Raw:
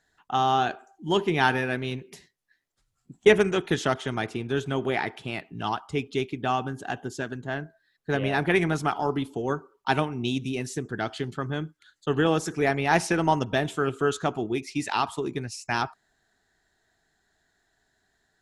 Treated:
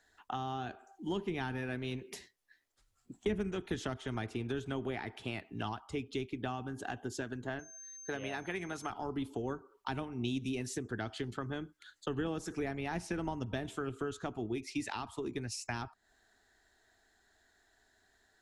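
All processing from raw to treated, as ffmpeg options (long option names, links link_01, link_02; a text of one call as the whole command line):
ffmpeg -i in.wav -filter_complex "[0:a]asettb=1/sr,asplit=3[link_01][link_02][link_03];[link_01]atrim=end=7.594[link_04];[link_02]atrim=start=7.59:end=8.9,asetpts=PTS-STARTPTS,afade=type=in:duration=0.004:curve=qsin,afade=type=out:start_time=1.306:duration=0.004:curve=qsin,highpass=55,lowshelf=frequency=390:gain=-9,aeval=exprs='val(0)+0.00398*sin(2*PI*6300*n/s)':channel_layout=same[link_05];[link_03]atrim=start=8.896[link_06];[link_04][link_05]acrossfade=duration=0.004:curve1=hsin:curve2=qsin[link_07];[link_07][link_06]acrossfade=duration=0.004:curve1=qsin:curve2=hsin,equalizer=frequency=150:width_type=o:width=0.48:gain=-15,acrossover=split=200[link_08][link_09];[link_09]acompressor=threshold=-38dB:ratio=10[link_10];[link_08][link_10]amix=inputs=2:normalize=0,volume=1dB" out.wav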